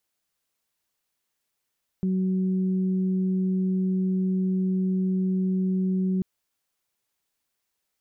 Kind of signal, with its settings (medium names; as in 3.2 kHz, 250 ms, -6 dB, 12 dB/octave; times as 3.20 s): steady additive tone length 4.19 s, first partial 187 Hz, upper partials -13 dB, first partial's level -21.5 dB